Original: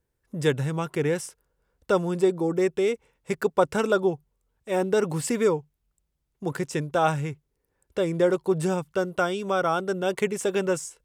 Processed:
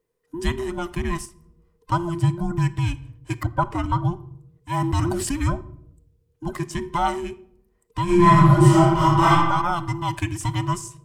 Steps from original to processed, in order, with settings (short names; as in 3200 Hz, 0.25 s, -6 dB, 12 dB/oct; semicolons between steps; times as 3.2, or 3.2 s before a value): band inversion scrambler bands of 500 Hz; reverb RT60 0.70 s, pre-delay 6 ms, DRR 13 dB; 1.25–1.92 compressor 2.5:1, threshold -45 dBFS, peak gain reduction 15.5 dB; 3.43–4.05 high shelf 2800 Hz -12 dB; 4.7–5.32 sustainer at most 30 dB/s; 8.04–9.3 reverb throw, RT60 1.2 s, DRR -10.5 dB